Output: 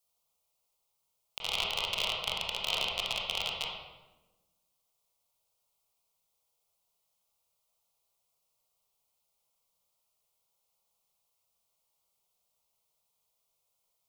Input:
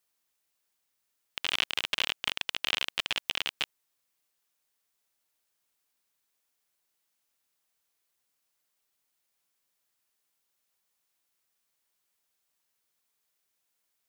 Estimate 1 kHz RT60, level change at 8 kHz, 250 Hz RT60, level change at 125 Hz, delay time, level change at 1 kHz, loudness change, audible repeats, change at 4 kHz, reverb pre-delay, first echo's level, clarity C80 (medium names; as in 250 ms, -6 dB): 1.0 s, -0.5 dB, 1.7 s, +4.0 dB, no echo, +2.0 dB, -1.5 dB, no echo, -1.0 dB, 24 ms, no echo, 4.0 dB